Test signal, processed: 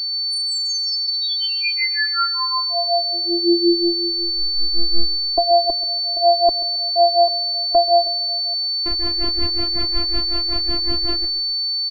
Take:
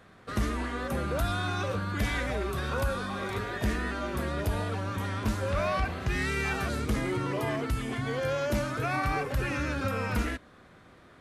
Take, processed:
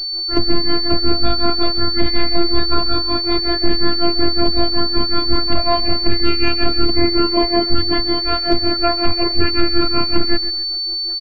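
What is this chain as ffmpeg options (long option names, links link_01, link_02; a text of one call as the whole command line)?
ffmpeg -i in.wav -af "aemphasis=mode=reproduction:type=riaa,asoftclip=type=hard:threshold=-14dB,highpass=43,lowshelf=frequency=150:gain=-3,afftfilt=real='hypot(re,im)*cos(PI*b)':imag='0':win_size=512:overlap=0.75,tremolo=f=5.4:d=0.92,aeval=exprs='val(0)+0.0112*sin(2*PI*4500*n/s)':channel_layout=same,afftdn=noise_reduction=13:noise_floor=-50,aecho=1:1:134|268|402:0.168|0.0638|0.0242,alimiter=level_in=19dB:limit=-1dB:release=50:level=0:latency=1,volume=-1dB" out.wav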